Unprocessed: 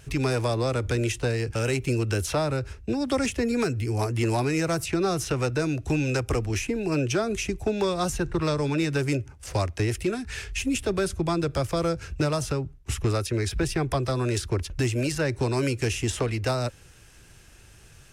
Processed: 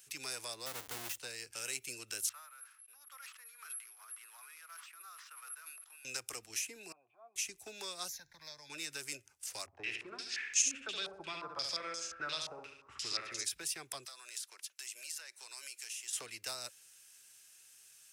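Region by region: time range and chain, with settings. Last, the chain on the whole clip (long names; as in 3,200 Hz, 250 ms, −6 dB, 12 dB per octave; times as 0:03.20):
0:00.66–0:01.18: each half-wave held at its own peak + high-shelf EQ 2,100 Hz −10.5 dB + notch filter 2,400 Hz, Q 25
0:02.29–0:06.05: bad sample-rate conversion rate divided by 4×, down none, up zero stuff + four-pole ladder band-pass 1,400 Hz, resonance 60% + level that may fall only so fast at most 62 dB per second
0:06.92–0:07.36: transient designer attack −9 dB, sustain +10 dB + formant resonators in series a
0:08.08–0:08.70: downward compressor 2 to 1, threshold −28 dBFS + phaser with its sweep stopped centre 1,900 Hz, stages 8
0:09.66–0:13.44: flutter between parallel walls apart 11.9 metres, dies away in 0.85 s + low-pass on a step sequencer 5.7 Hz 810–6,600 Hz
0:14.05–0:16.13: high-pass filter 830 Hz + downward compressor 2.5 to 1, threshold −37 dBFS
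whole clip: first difference; mains-hum notches 50/100 Hz; level −1.5 dB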